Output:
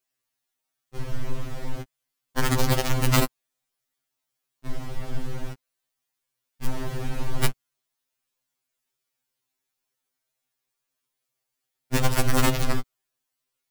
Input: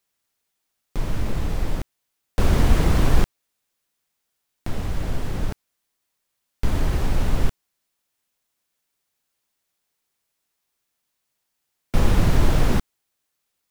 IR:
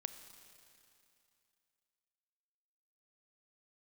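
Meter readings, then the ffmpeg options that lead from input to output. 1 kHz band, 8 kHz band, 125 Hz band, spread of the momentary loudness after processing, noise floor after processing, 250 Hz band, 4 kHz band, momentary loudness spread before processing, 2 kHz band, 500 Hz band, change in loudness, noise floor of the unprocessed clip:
+0.5 dB, +5.0 dB, -4.0 dB, 17 LU, -83 dBFS, -3.5 dB, +3.0 dB, 13 LU, +1.5 dB, -1.5 dB, -2.5 dB, -78 dBFS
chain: -af "aeval=exprs='(mod(2.37*val(0)+1,2)-1)/2.37':c=same,afftfilt=real='re*2.45*eq(mod(b,6),0)':imag='im*2.45*eq(mod(b,6),0)':win_size=2048:overlap=0.75,volume=-3dB"

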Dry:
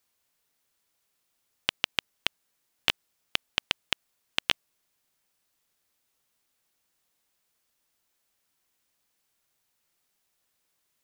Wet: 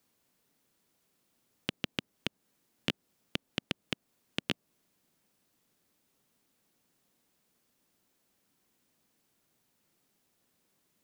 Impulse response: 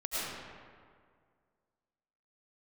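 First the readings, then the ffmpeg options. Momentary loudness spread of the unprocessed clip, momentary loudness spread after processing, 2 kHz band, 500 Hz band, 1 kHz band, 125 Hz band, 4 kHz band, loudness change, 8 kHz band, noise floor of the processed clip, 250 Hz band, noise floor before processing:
5 LU, 5 LU, -8.5 dB, +0.5 dB, -9.0 dB, +6.0 dB, -9.0 dB, -8.0 dB, -8.5 dB, -78 dBFS, +8.0 dB, -77 dBFS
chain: -filter_complex "[0:a]equalizer=f=220:w=0.53:g=13.5,acrossover=split=960[a][b];[a]asoftclip=type=tanh:threshold=-22.5dB[c];[b]alimiter=limit=-12.5dB:level=0:latency=1:release=213[d];[c][d]amix=inputs=2:normalize=0"

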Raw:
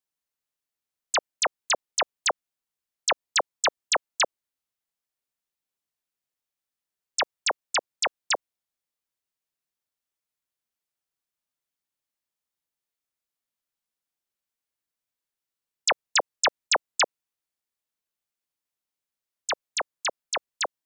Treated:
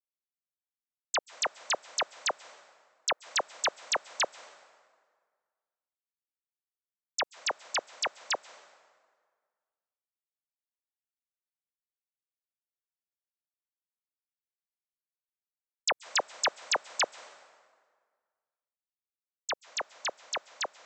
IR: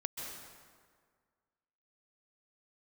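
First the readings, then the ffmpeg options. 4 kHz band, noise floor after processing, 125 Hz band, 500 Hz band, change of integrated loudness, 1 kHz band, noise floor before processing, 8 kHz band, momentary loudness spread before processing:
-5.5 dB, under -85 dBFS, n/a, -5.5 dB, -5.5 dB, -5.5 dB, under -85 dBFS, -5.5 dB, 8 LU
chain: -filter_complex "[0:a]agate=range=-33dB:threshold=-36dB:ratio=3:detection=peak,asplit=2[a][b];[1:a]atrim=start_sample=2205[c];[b][c]afir=irnorm=-1:irlink=0,volume=-15dB[d];[a][d]amix=inputs=2:normalize=0,volume=-6.5dB"

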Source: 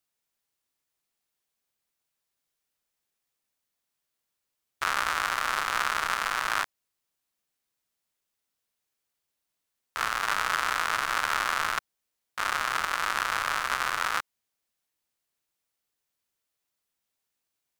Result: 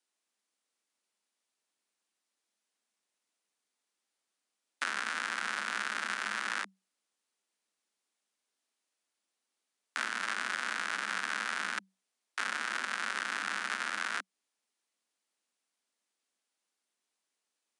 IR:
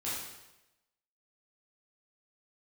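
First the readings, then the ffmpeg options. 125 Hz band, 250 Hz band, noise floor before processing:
under -10 dB, -1.5 dB, -83 dBFS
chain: -filter_complex "[0:a]aresample=22050,aresample=44100,afreqshift=190,acrossover=split=560|2700[a][b][c];[a]acompressor=threshold=-50dB:ratio=4[d];[b]acompressor=threshold=-33dB:ratio=4[e];[c]acompressor=threshold=-40dB:ratio=4[f];[d][e][f]amix=inputs=3:normalize=0"

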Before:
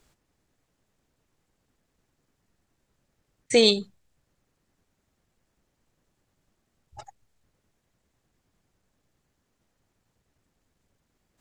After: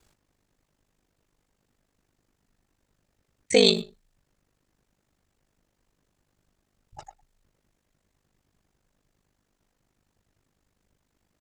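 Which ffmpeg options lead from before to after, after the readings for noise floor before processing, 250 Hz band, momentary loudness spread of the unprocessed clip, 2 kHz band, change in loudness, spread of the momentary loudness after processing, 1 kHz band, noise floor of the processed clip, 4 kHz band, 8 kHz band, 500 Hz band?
-77 dBFS, 0.0 dB, 7 LU, +0.5 dB, 0.0 dB, 8 LU, 0.0 dB, -78 dBFS, 0.0 dB, 0.0 dB, 0.0 dB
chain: -filter_complex "[0:a]asplit=2[a][b];[b]adelay=110,highpass=300,lowpass=3.4k,asoftclip=type=hard:threshold=-15dB,volume=-17dB[c];[a][c]amix=inputs=2:normalize=0,aeval=exprs='val(0)*sin(2*PI*25*n/s)':c=same,volume=3dB"

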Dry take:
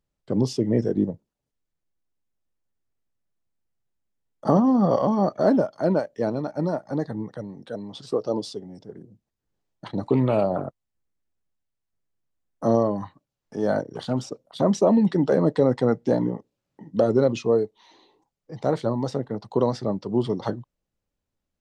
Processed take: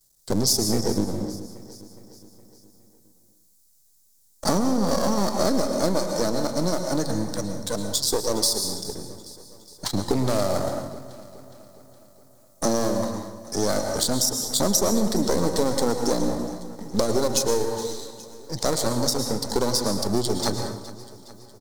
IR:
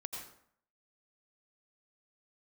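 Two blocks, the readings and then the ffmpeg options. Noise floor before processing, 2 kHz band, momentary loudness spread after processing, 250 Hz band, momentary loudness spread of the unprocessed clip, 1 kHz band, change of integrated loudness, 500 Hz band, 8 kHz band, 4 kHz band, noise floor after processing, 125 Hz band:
-84 dBFS, +3.5 dB, 16 LU, -2.0 dB, 16 LU, +0.5 dB, -0.5 dB, -2.0 dB, +21.5 dB, +15.5 dB, -59 dBFS, -2.5 dB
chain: -filter_complex "[0:a]aeval=exprs='if(lt(val(0),0),0.251*val(0),val(0))':c=same,aexciter=amount=13.3:drive=4.3:freq=4.2k,asplit=2[a][b];[1:a]atrim=start_sample=2205,asetrate=34839,aresample=44100[c];[b][c]afir=irnorm=-1:irlink=0,volume=0.5dB[d];[a][d]amix=inputs=2:normalize=0,acompressor=threshold=-24dB:ratio=3,asplit=2[e][f];[f]aecho=0:1:415|830|1245|1660|2075:0.141|0.0777|0.0427|0.0235|0.0129[g];[e][g]amix=inputs=2:normalize=0,volume=3.5dB"

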